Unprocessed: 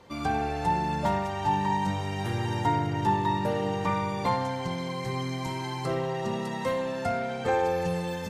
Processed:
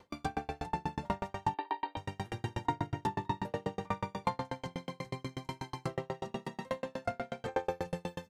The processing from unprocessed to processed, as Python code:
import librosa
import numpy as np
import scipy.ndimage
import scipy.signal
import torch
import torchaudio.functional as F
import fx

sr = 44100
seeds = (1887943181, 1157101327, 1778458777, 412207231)

y = fx.brickwall_bandpass(x, sr, low_hz=240.0, high_hz=4700.0, at=(1.54, 1.97))
y = fx.tremolo_decay(y, sr, direction='decaying', hz=8.2, depth_db=39)